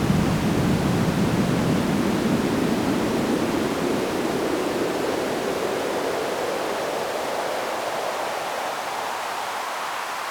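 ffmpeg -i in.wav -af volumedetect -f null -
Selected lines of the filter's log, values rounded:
mean_volume: -23.6 dB
max_volume: -8.5 dB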